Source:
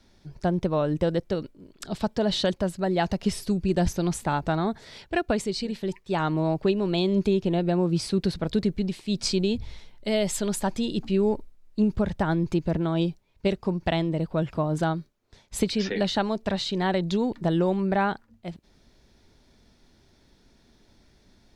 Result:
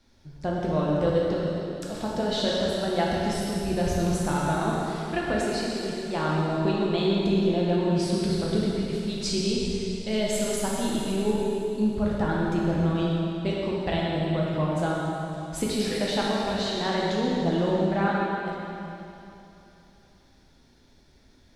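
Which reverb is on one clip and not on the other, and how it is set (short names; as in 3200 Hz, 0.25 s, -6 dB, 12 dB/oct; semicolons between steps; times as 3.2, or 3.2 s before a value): plate-style reverb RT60 3 s, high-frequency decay 1×, DRR -5 dB; gain -5 dB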